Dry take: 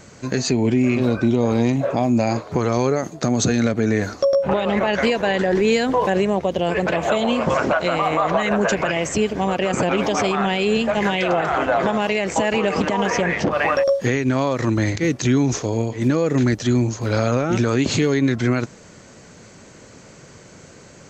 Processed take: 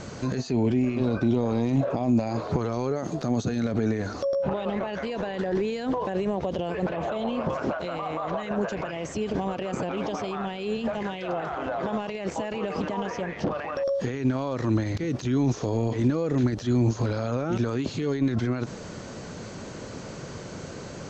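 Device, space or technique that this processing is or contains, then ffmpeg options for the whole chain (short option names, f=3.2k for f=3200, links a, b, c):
de-esser from a sidechain: -filter_complex "[0:a]asettb=1/sr,asplit=3[a][b][c];[a]atrim=end=6.884[d];[b]atrim=start=6.88:end=7.53,asetpts=PTS-STARTPTS,afade=t=in:d=0.004:c=qsin,afade=t=out:st=0.646:d=0.004:c=qsin,lowpass=f=3.5k:p=1[e];[c]atrim=start=7.526[f];[d][e]acrossfade=d=0.004:c1=hsin:c2=qsin[g];[g][f]acrossfade=d=0.004:c1=qsin:c2=hsin,lowpass=5.1k,asplit=2[h][i];[i]highpass=f=4.1k:p=1,apad=whole_len=930453[j];[h][j]sidechaincompress=threshold=-50dB:ratio=5:attack=3.4:release=35,equalizer=f=2.1k:t=o:w=0.88:g=-5.5,volume=7dB"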